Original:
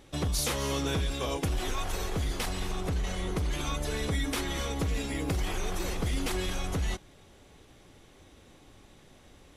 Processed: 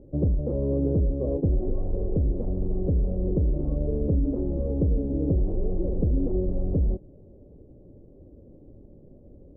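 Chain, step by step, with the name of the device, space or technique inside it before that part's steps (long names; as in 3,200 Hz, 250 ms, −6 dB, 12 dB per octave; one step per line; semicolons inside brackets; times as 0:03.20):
under water (low-pass filter 440 Hz 24 dB per octave; parametric band 570 Hz +9 dB 0.32 octaves)
level +7.5 dB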